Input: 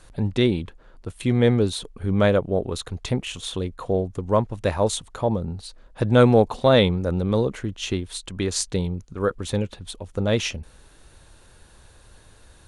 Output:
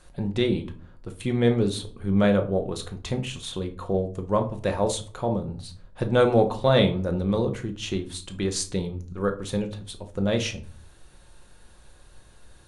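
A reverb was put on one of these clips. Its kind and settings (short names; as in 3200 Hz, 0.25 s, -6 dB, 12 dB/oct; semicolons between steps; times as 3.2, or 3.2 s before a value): shoebox room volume 320 m³, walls furnished, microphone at 0.94 m; gain -4 dB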